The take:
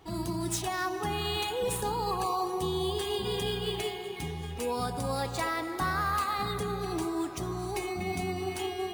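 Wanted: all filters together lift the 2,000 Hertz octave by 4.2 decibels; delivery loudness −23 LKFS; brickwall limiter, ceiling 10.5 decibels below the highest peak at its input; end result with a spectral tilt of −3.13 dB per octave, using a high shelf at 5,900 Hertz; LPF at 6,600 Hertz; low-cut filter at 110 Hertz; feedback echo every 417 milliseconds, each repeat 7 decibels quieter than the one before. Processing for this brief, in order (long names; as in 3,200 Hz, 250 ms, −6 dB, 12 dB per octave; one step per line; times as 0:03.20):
high-pass filter 110 Hz
low-pass filter 6,600 Hz
parametric band 2,000 Hz +6 dB
high-shelf EQ 5,900 Hz −6.5 dB
brickwall limiter −26.5 dBFS
repeating echo 417 ms, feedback 45%, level −7 dB
level +11 dB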